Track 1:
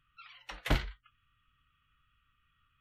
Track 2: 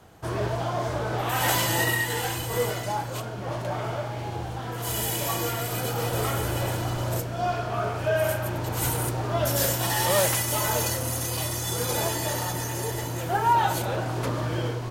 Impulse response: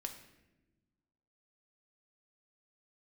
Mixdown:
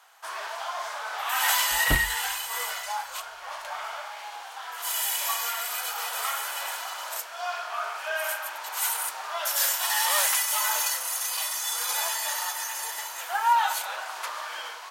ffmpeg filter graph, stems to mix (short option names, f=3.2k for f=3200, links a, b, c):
-filter_complex "[0:a]adelay=1200,volume=2.5dB,asplit=2[a][b];[b]volume=-21.5dB[c];[1:a]highpass=f=900:w=0.5412,highpass=f=900:w=1.3066,volume=2dB[d];[2:a]atrim=start_sample=2205[e];[c][e]afir=irnorm=-1:irlink=0[f];[a][d][f]amix=inputs=3:normalize=0"